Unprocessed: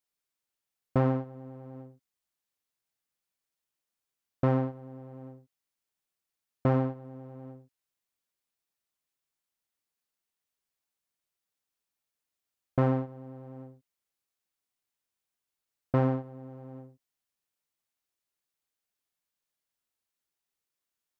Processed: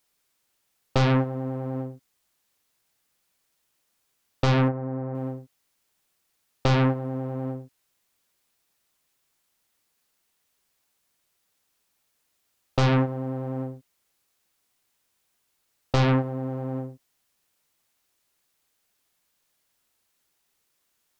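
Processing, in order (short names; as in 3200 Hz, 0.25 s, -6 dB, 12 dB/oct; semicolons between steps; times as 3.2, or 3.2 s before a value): 4.68–5.15 LPF 2100 Hz 24 dB/oct; in parallel at -8.5 dB: sine folder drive 14 dB, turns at -14.5 dBFS; on the sum: gain +2.5 dB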